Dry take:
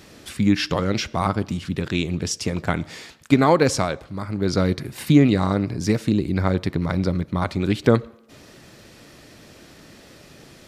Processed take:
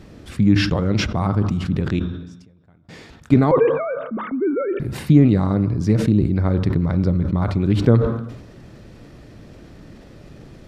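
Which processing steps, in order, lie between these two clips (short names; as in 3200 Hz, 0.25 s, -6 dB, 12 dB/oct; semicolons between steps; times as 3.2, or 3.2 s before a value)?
3.51–4.8 sine-wave speech; tilt -3 dB/oct; in parallel at -3 dB: compressor, threshold -20 dBFS, peak gain reduction 16.5 dB; 1.99–2.89 on the sum: flipped gate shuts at -19 dBFS, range -34 dB; on a send at -15 dB: reverb RT60 1.1 s, pre-delay 3 ms; on the sum: sustainer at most 59 dB/s; gain -6 dB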